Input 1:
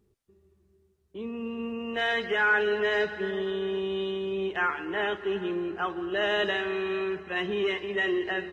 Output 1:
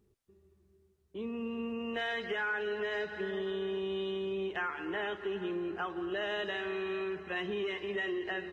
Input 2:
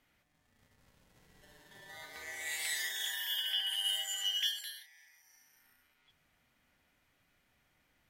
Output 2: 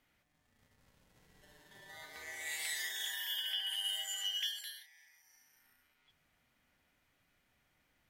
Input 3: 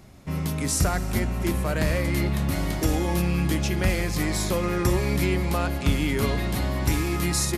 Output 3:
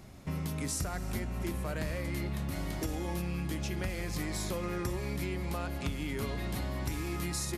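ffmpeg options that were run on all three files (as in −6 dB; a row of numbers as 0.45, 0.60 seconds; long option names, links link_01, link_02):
-af "acompressor=threshold=-31dB:ratio=4,volume=-2dB"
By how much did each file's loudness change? −7.0, −3.0, −10.5 LU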